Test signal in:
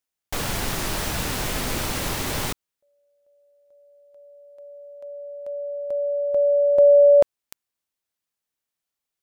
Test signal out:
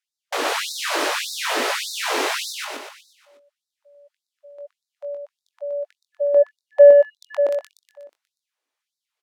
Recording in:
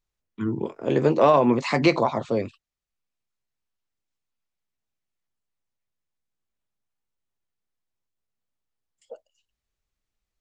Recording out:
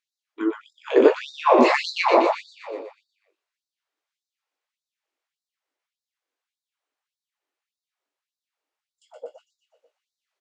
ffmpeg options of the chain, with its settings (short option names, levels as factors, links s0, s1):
-filter_complex "[0:a]acontrast=31,aemphasis=mode=reproduction:type=50fm,asplit=2[s0][s1];[s1]adelay=21,volume=0.447[s2];[s0][s2]amix=inputs=2:normalize=0,asplit=2[s3][s4];[s4]aecho=0:1:121|242|363|484|605|726|847:0.708|0.375|0.199|0.105|0.0559|0.0296|0.0157[s5];[s3][s5]amix=inputs=2:normalize=0,afftfilt=real='re*gte(b*sr/1024,250*pow(3700/250,0.5+0.5*sin(2*PI*1.7*pts/sr)))':imag='im*gte(b*sr/1024,250*pow(3700/250,0.5+0.5*sin(2*PI*1.7*pts/sr)))':win_size=1024:overlap=0.75,volume=1.12"